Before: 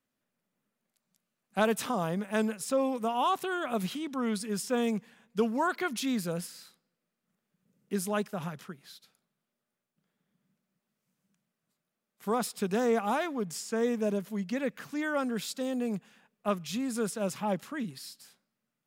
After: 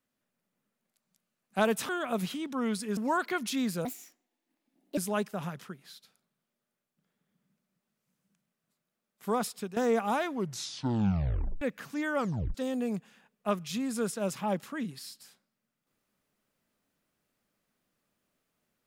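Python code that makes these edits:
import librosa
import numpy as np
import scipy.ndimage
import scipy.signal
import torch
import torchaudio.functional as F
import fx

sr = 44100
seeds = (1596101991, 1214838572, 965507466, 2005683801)

y = fx.edit(x, sr, fx.cut(start_s=1.89, length_s=1.61),
    fx.cut(start_s=4.58, length_s=0.89),
    fx.speed_span(start_s=6.35, length_s=1.62, speed=1.44),
    fx.fade_out_to(start_s=12.3, length_s=0.46, curve='qsin', floor_db=-15.0),
    fx.tape_stop(start_s=13.3, length_s=1.31),
    fx.tape_stop(start_s=15.18, length_s=0.36), tone=tone)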